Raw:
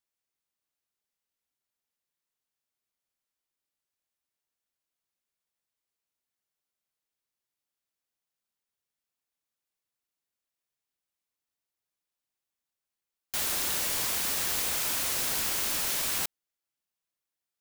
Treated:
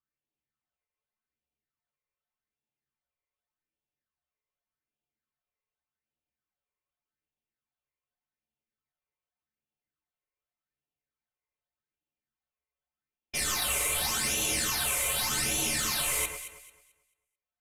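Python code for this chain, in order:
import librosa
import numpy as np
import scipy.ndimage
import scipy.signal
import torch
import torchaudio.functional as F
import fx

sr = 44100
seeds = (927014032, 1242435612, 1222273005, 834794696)

p1 = fx.env_lowpass(x, sr, base_hz=2900.0, full_db=-30.5)
p2 = np.where(np.abs(p1) >= 10.0 ** (-41.0 / 20.0), p1, 0.0)
p3 = p1 + (p2 * librosa.db_to_amplitude(-5.5))
p4 = fx.phaser_stages(p3, sr, stages=8, low_hz=230.0, high_hz=2100.0, hz=0.85, feedback_pct=25)
p5 = fx.stiff_resonator(p4, sr, f0_hz=65.0, decay_s=0.21, stiffness=0.03)
p6 = fx.formant_shift(p5, sr, semitones=-5)
p7 = p6 + fx.echo_alternate(p6, sr, ms=110, hz=2000.0, feedback_pct=52, wet_db=-6.0, dry=0)
y = p7 * librosa.db_to_amplitude(7.0)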